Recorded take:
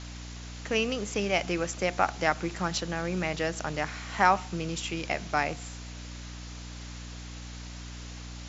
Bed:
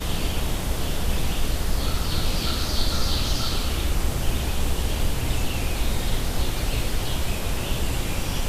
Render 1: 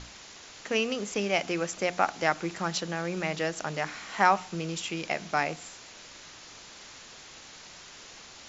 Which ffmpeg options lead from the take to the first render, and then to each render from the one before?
-af "bandreject=f=60:t=h:w=6,bandreject=f=120:t=h:w=6,bandreject=f=180:t=h:w=6,bandreject=f=240:t=h:w=6,bandreject=f=300:t=h:w=6"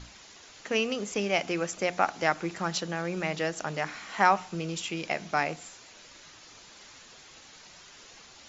-af "afftdn=nr=6:nf=-49"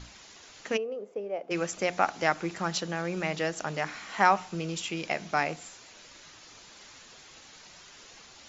-filter_complex "[0:a]asplit=3[s0][s1][s2];[s0]afade=t=out:st=0.76:d=0.02[s3];[s1]bandpass=f=490:t=q:w=3.1,afade=t=in:st=0.76:d=0.02,afade=t=out:st=1.5:d=0.02[s4];[s2]afade=t=in:st=1.5:d=0.02[s5];[s3][s4][s5]amix=inputs=3:normalize=0"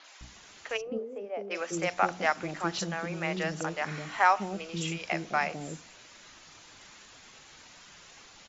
-filter_complex "[0:a]acrossover=split=450|5000[s0][s1][s2];[s2]adelay=40[s3];[s0]adelay=210[s4];[s4][s1][s3]amix=inputs=3:normalize=0"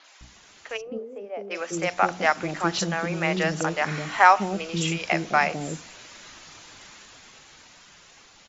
-af "dynaudnorm=f=320:g=13:m=3.76"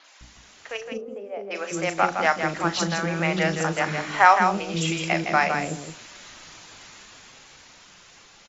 -filter_complex "[0:a]asplit=2[s0][s1];[s1]adelay=37,volume=0.224[s2];[s0][s2]amix=inputs=2:normalize=0,aecho=1:1:162:0.473"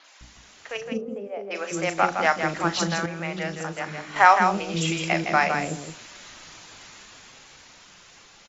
-filter_complex "[0:a]asettb=1/sr,asplit=3[s0][s1][s2];[s0]atrim=end=0.764[s3];[s1]atrim=start=0.76:end=1.28,asetpts=PTS-STARTPTS,afade=t=in:d=0.004:c=qsin,afade=t=out:st=0.516:d=0.004:c=qsin,equalizer=f=160:w=1.5:g=15[s4];[s2]atrim=start=1.276[s5];[s3][s4]acrossfade=d=0.004:c1=hsin:c2=qsin[s6];[s6][s5]acrossfade=d=0.004:c1=qsin:c2=hsin,asplit=3[s7][s8][s9];[s7]atrim=end=3.062[s10];[s8]atrim=start=3.058:end=4.162,asetpts=PTS-STARTPTS,volume=0.447[s11];[s9]atrim=start=4.158[s12];[s10][s11]acrossfade=d=0.004:c1=hsin:c2=hsin[s13];[s13][s12]acrossfade=d=0.004:c1=hsin:c2=hsin"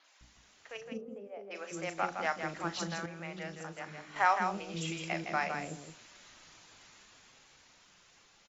-af "volume=0.251"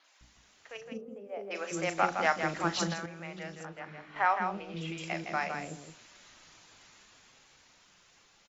-filter_complex "[0:a]asplit=3[s0][s1][s2];[s0]afade=t=out:st=1.28:d=0.02[s3];[s1]acontrast=46,afade=t=in:st=1.28:d=0.02,afade=t=out:st=2.92:d=0.02[s4];[s2]afade=t=in:st=2.92:d=0.02[s5];[s3][s4][s5]amix=inputs=3:normalize=0,asettb=1/sr,asplit=3[s6][s7][s8];[s6]atrim=end=3.654[s9];[s7]atrim=start=3.65:end=4.98,asetpts=PTS-STARTPTS,afade=t=in:d=0.004:c=qsin,afade=t=out:st=1.326:d=0.004:c=qsin,lowpass=3200[s10];[s8]atrim=start=4.976[s11];[s9][s10]acrossfade=d=0.004:c1=hsin:c2=qsin[s12];[s12][s11]acrossfade=d=0.004:c1=qsin:c2=hsin"

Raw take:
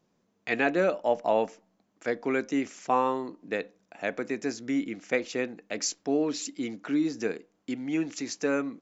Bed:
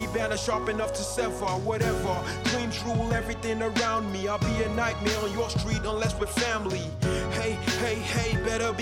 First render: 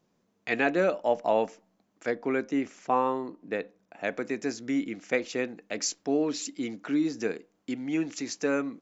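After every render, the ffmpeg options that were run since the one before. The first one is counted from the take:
-filter_complex "[0:a]asettb=1/sr,asplit=3[s0][s1][s2];[s0]atrim=end=2.114[s3];[s1]atrim=start=2.11:end=4.04,asetpts=PTS-STARTPTS,afade=t=in:d=0.004:c=qsin,afade=t=out:st=1.926:d=0.004:c=qsin,highshelf=f=3300:g=-8.5[s4];[s2]atrim=start=4.036[s5];[s3][s4]acrossfade=d=0.004:c1=hsin:c2=qsin[s6];[s6][s5]acrossfade=d=0.004:c1=qsin:c2=hsin"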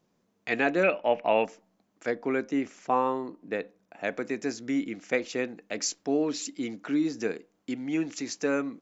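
-filter_complex "[0:a]asettb=1/sr,asplit=3[s0][s1][s2];[s0]atrim=end=0.834[s3];[s1]atrim=start=0.83:end=1.45,asetpts=PTS-STARTPTS,afade=t=in:d=0.004:c=qsin,afade=t=out:st=0.616:d=0.004:c=qsin,lowpass=f=2500:t=q:w=5.8[s4];[s2]atrim=start=1.446[s5];[s3][s4]acrossfade=d=0.004:c1=hsin:c2=qsin[s6];[s6][s5]acrossfade=d=0.004:c1=qsin:c2=hsin"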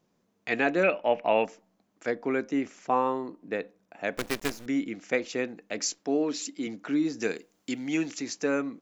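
-filter_complex "[0:a]asettb=1/sr,asplit=3[s0][s1][s2];[s0]atrim=end=4.174[s3];[s1]atrim=start=4.17:end=4.66,asetpts=PTS-STARTPTS,afade=t=in:d=0.004:c=qsin,afade=t=out:st=0.486:d=0.004:c=qsin,acrusher=bits=5:dc=4:mix=0:aa=0.000001[s4];[s2]atrim=start=4.656[s5];[s3][s4]acrossfade=d=0.004:c1=hsin:c2=qsin[s6];[s6][s5]acrossfade=d=0.004:c1=qsin:c2=hsin,asettb=1/sr,asplit=3[s7][s8][s9];[s7]atrim=end=5.994[s10];[s8]atrim=start=5.99:end=6.67,asetpts=PTS-STARTPTS,afade=t=in:d=0.004:c=qsin,afade=t=out:st=0.676:d=0.004:c=qsin,highpass=160[s11];[s9]atrim=start=6.666[s12];[s10][s11]acrossfade=d=0.004:c1=hsin:c2=qsin[s13];[s13][s12]acrossfade=d=0.004:c1=qsin:c2=hsin,asettb=1/sr,asplit=3[s14][s15][s16];[s14]atrim=end=7.224[s17];[s15]atrim=start=7.22:end=8.12,asetpts=PTS-STARTPTS,afade=t=in:d=0.004:c=qsin,afade=t=out:st=0.896:d=0.004:c=qsin,highshelf=f=2800:g=11.5[s18];[s16]atrim=start=8.116[s19];[s17][s18]acrossfade=d=0.004:c1=hsin:c2=qsin[s20];[s20][s19]acrossfade=d=0.004:c1=qsin:c2=hsin"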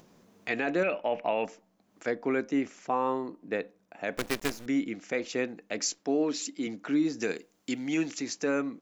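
-af "alimiter=limit=0.126:level=0:latency=1:release=34,acompressor=mode=upward:threshold=0.00447:ratio=2.5"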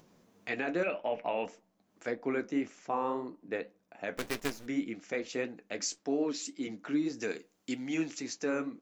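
-af "flanger=delay=6.4:depth=6.9:regen=-55:speed=1.8:shape=triangular"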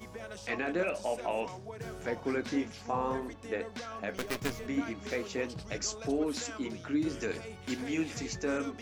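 -filter_complex "[1:a]volume=0.158[s0];[0:a][s0]amix=inputs=2:normalize=0"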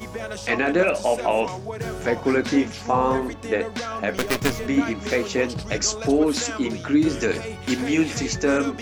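-af "volume=3.98"

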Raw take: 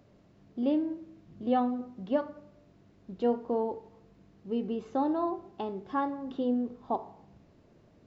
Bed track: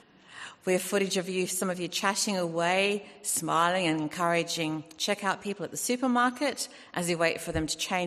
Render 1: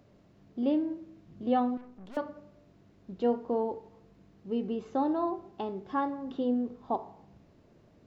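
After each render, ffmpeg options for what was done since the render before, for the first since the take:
-filter_complex "[0:a]asettb=1/sr,asplit=3[s0][s1][s2];[s0]atrim=end=1.774[s3];[s1]atrim=start=1.77:end=2.17,asetpts=PTS-STARTPTS,afade=t=in:d=0.004:c=qsin,afade=t=out:st=0.396:d=0.004:c=qsin,aeval=exprs='(tanh(200*val(0)+0.7)-tanh(0.7))/200':c=same[s4];[s2]atrim=start=2.166[s5];[s3][s4]acrossfade=d=0.004:c1=hsin:c2=qsin[s6];[s6][s5]acrossfade=d=0.004:c1=qsin:c2=hsin"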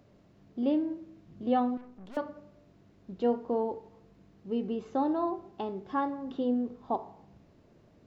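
-af anull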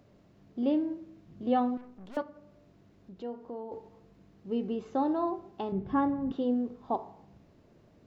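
-filter_complex "[0:a]asettb=1/sr,asplit=3[s0][s1][s2];[s0]atrim=end=2.224[s3];[s1]atrim=start=2.22:end=3.72,asetpts=PTS-STARTPTS,afade=t=in:d=0.004:c=qsin,afade=t=out:st=1.496:d=0.004:c=qsin,acompressor=threshold=0.00178:ratio=1.5:attack=3.2:release=140:knee=1:detection=peak[s4];[s2]atrim=start=3.716[s5];[s3][s4]acrossfade=d=0.004:c1=hsin:c2=qsin[s6];[s6][s5]acrossfade=d=0.004:c1=qsin:c2=hsin,asettb=1/sr,asplit=3[s7][s8][s9];[s7]atrim=end=5.724[s10];[s8]atrim=start=5.72:end=6.32,asetpts=PTS-STARTPTS,afade=t=in:d=0.004:c=qsin,afade=t=out:st=0.596:d=0.004:c=qsin,bass=f=250:g=15,treble=f=4000:g=-11[s11];[s9]atrim=start=6.316[s12];[s10][s11]acrossfade=d=0.004:c1=hsin:c2=qsin[s13];[s13][s12]acrossfade=d=0.004:c1=qsin:c2=hsin"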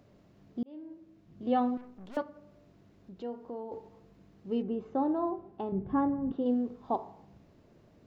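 -filter_complex "[0:a]asettb=1/sr,asplit=3[s0][s1][s2];[s0]atrim=end=4.624[s3];[s1]atrim=start=4.62:end=6.46,asetpts=PTS-STARTPTS,afade=t=in:d=0.004:c=qsin,afade=t=out:st=1.836:d=0.004:c=qsin,lowpass=f=1100:p=1[s4];[s2]atrim=start=6.456[s5];[s3][s4]acrossfade=d=0.004:c1=hsin:c2=qsin[s6];[s6][s5]acrossfade=d=0.004:c1=qsin:c2=hsin,asplit=2[s7][s8];[s7]atrim=end=0.63,asetpts=PTS-STARTPTS,afade=t=out:st=0.626:d=0.004:c=hsin[s9];[s8]atrim=start=0.63,asetpts=PTS-STARTPTS,afade=t=in:d=1.03[s10];[s9][s10]concat=n=2:v=0:a=1"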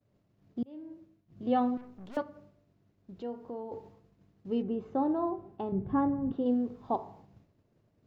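-af "agate=range=0.0224:threshold=0.00282:ratio=3:detection=peak,equalizer=f=110:w=1.9:g=6.5"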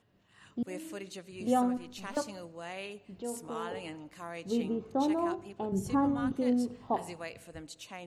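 -filter_complex "[1:a]volume=0.158[s0];[0:a][s0]amix=inputs=2:normalize=0"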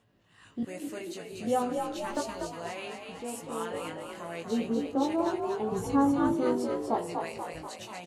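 -filter_complex "[0:a]asplit=2[s0][s1];[s1]adelay=18,volume=0.631[s2];[s0][s2]amix=inputs=2:normalize=0,asplit=9[s3][s4][s5][s6][s7][s8][s9][s10][s11];[s4]adelay=242,afreqshift=52,volume=0.531[s12];[s5]adelay=484,afreqshift=104,volume=0.309[s13];[s6]adelay=726,afreqshift=156,volume=0.178[s14];[s7]adelay=968,afreqshift=208,volume=0.104[s15];[s8]adelay=1210,afreqshift=260,volume=0.0603[s16];[s9]adelay=1452,afreqshift=312,volume=0.0347[s17];[s10]adelay=1694,afreqshift=364,volume=0.0202[s18];[s11]adelay=1936,afreqshift=416,volume=0.0117[s19];[s3][s12][s13][s14][s15][s16][s17][s18][s19]amix=inputs=9:normalize=0"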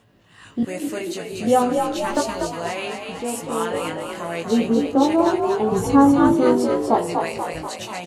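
-af "volume=3.55"

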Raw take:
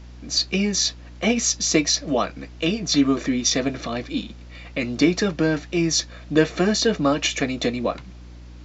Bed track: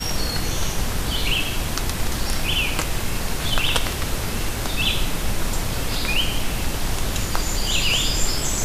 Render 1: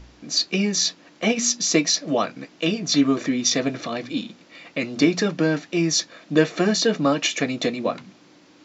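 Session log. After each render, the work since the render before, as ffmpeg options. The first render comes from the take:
-af "bandreject=f=60:t=h:w=4,bandreject=f=120:t=h:w=4,bandreject=f=180:t=h:w=4,bandreject=f=240:t=h:w=4"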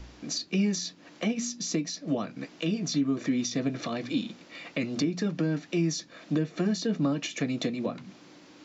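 -filter_complex "[0:a]acrossover=split=290[s0][s1];[s1]acompressor=threshold=0.0282:ratio=10[s2];[s0][s2]amix=inputs=2:normalize=0,alimiter=limit=0.126:level=0:latency=1:release=422"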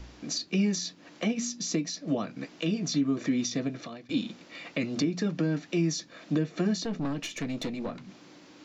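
-filter_complex "[0:a]asplit=3[s0][s1][s2];[s0]afade=t=out:st=6.83:d=0.02[s3];[s1]aeval=exprs='(tanh(22.4*val(0)+0.4)-tanh(0.4))/22.4':c=same,afade=t=in:st=6.83:d=0.02,afade=t=out:st=8.08:d=0.02[s4];[s2]afade=t=in:st=8.08:d=0.02[s5];[s3][s4][s5]amix=inputs=3:normalize=0,asplit=2[s6][s7];[s6]atrim=end=4.09,asetpts=PTS-STARTPTS,afade=t=out:st=3.5:d=0.59:silence=0.0841395[s8];[s7]atrim=start=4.09,asetpts=PTS-STARTPTS,afade=t=in:d=0.004:c=hsin:silence=0.0841395[s9];[s8][s9]concat=n=2:v=0:a=1"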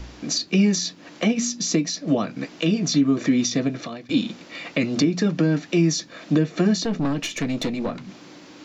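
-af "volume=2.51"

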